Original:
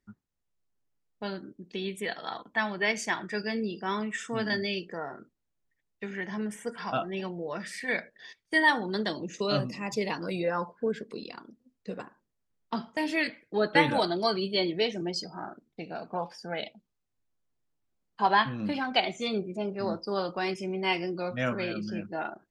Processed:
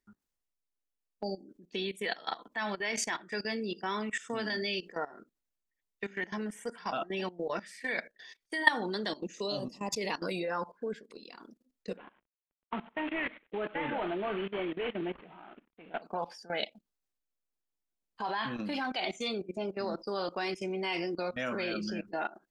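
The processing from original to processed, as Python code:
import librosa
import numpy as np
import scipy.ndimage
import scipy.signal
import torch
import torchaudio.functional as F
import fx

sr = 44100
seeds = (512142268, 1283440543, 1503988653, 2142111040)

y = fx.spec_erase(x, sr, start_s=1.23, length_s=0.26, low_hz=840.0, high_hz=4400.0)
y = fx.band_shelf(y, sr, hz=1800.0, db=-15.0, octaves=1.2, at=(9.42, 9.88), fade=0.02)
y = fx.cvsd(y, sr, bps=16000, at=(11.97, 16.02))
y = fx.high_shelf(y, sr, hz=3400.0, db=4.0)
y = fx.level_steps(y, sr, step_db=18)
y = fx.peak_eq(y, sr, hz=110.0, db=-13.0, octaves=1.1)
y = y * 10.0 ** (3.5 / 20.0)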